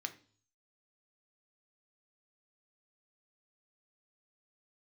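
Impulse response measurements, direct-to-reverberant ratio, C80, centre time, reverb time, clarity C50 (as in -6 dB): 6.5 dB, 20.0 dB, 6 ms, 0.45 s, 15.0 dB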